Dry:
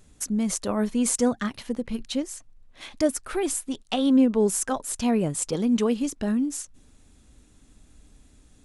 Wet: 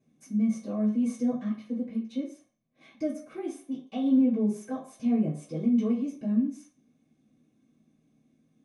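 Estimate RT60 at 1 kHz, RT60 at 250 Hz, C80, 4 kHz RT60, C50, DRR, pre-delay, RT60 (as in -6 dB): 0.45 s, 0.35 s, 11.0 dB, 0.50 s, 7.5 dB, -10.0 dB, 3 ms, 0.45 s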